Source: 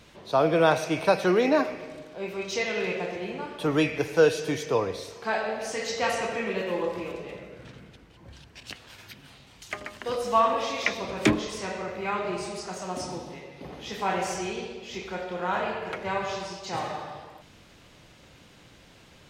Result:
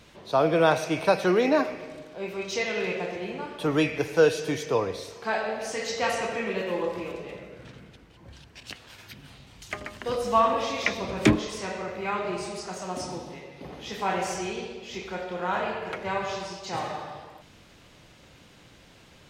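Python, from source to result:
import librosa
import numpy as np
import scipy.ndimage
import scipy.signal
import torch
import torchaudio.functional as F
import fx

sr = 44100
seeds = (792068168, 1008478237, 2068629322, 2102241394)

y = fx.low_shelf(x, sr, hz=200.0, db=7.0, at=(9.11, 11.36))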